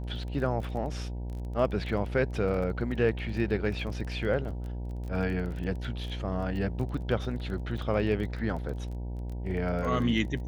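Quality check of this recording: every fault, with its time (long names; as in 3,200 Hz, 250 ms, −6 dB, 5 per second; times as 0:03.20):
mains buzz 60 Hz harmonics 16 −35 dBFS
surface crackle 19 per second −36 dBFS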